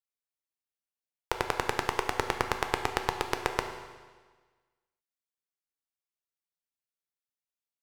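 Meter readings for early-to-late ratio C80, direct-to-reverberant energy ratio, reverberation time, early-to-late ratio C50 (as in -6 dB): 9.5 dB, 5.0 dB, 1.5 s, 8.0 dB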